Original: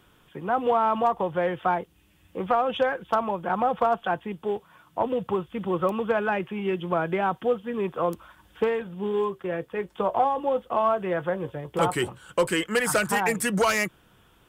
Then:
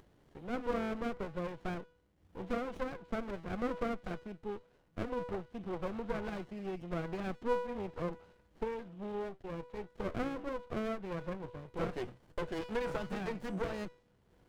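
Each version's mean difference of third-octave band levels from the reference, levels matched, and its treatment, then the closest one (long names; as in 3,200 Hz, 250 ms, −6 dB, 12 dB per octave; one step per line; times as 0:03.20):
7.0 dB: treble cut that deepens with the level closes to 1,500 Hz, closed at −18 dBFS
upward compression, threshold −44 dBFS
tuned comb filter 490 Hz, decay 0.69 s, mix 80%
windowed peak hold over 33 samples
level +2 dB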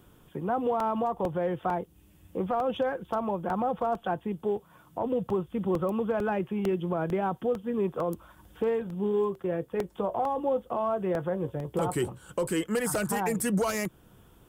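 3.5 dB: parametric band 2,300 Hz −11 dB 2.8 octaves
in parallel at −2.5 dB: downward compressor, threshold −39 dBFS, peak gain reduction 17.5 dB
on the sum: brickwall limiter −19.5 dBFS, peak gain reduction 5.5 dB
regular buffer underruns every 0.45 s, samples 64, repeat, from 0:00.80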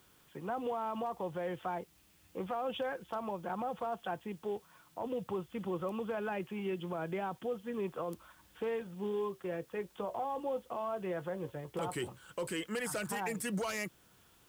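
4.5 dB: high-pass filter 47 Hz 6 dB per octave
dynamic equaliser 1,400 Hz, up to −4 dB, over −38 dBFS, Q 0.96
brickwall limiter −20.5 dBFS, peak gain reduction 7.5 dB
bit-depth reduction 10 bits, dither triangular
level −8 dB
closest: second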